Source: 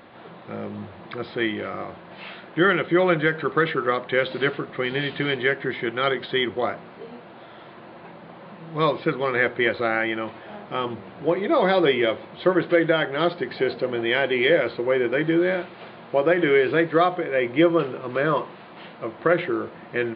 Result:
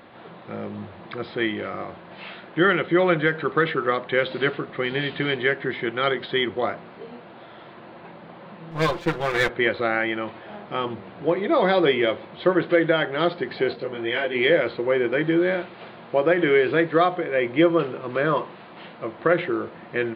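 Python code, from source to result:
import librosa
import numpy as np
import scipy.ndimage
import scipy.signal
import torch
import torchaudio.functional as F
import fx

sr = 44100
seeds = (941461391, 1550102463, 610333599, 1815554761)

y = fx.lower_of_two(x, sr, delay_ms=5.8, at=(8.71, 9.49))
y = fx.detune_double(y, sr, cents=fx.line((13.73, 27.0), (14.34, 16.0)), at=(13.73, 14.34), fade=0.02)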